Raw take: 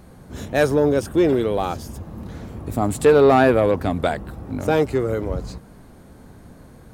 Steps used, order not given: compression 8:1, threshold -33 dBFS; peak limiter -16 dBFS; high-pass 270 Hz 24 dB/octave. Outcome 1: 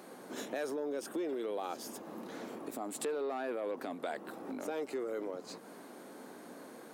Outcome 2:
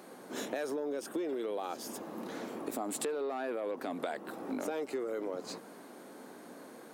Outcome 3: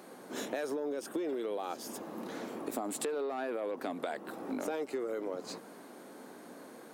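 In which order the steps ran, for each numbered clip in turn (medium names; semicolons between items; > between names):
peak limiter > compression > high-pass; peak limiter > high-pass > compression; high-pass > peak limiter > compression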